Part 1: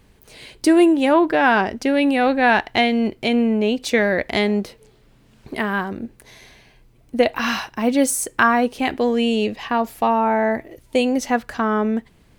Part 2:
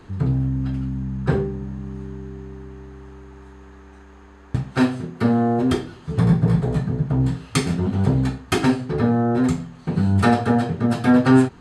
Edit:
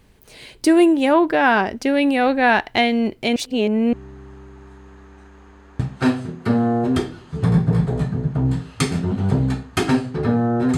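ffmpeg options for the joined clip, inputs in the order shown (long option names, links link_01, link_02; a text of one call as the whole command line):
ffmpeg -i cue0.wav -i cue1.wav -filter_complex "[0:a]apad=whole_dur=10.77,atrim=end=10.77,asplit=2[link_01][link_02];[link_01]atrim=end=3.362[link_03];[link_02]atrim=start=3.358:end=3.932,asetpts=PTS-STARTPTS,areverse[link_04];[1:a]atrim=start=2.678:end=9.52[link_05];[link_03][link_04]acrossfade=duration=0.004:curve1=hsin:curve2=hsin[link_06];[link_06][link_05]acrossfade=duration=0.004:curve1=hsin:curve2=hsin" out.wav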